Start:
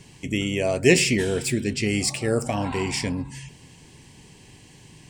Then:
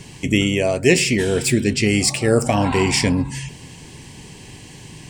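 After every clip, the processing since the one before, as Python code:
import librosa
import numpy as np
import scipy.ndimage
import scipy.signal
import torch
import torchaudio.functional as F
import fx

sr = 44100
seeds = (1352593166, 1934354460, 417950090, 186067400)

y = fx.rider(x, sr, range_db=4, speed_s=0.5)
y = y * 10.0 ** (5.5 / 20.0)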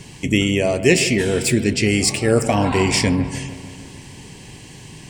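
y = fx.echo_wet_lowpass(x, sr, ms=151, feedback_pct=67, hz=2300.0, wet_db=-14)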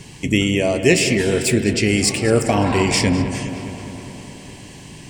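y = fx.echo_filtered(x, sr, ms=208, feedback_pct=75, hz=4700.0, wet_db=-13)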